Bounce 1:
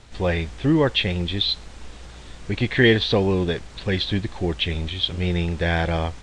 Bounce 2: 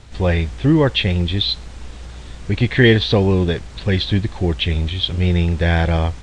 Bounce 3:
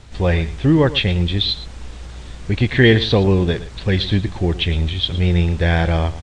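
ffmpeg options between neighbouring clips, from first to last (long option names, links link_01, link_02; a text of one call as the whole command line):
ffmpeg -i in.wav -af "equalizer=frequency=75:width=0.5:gain=6,volume=2.5dB" out.wav
ffmpeg -i in.wav -af "aecho=1:1:114:0.168" out.wav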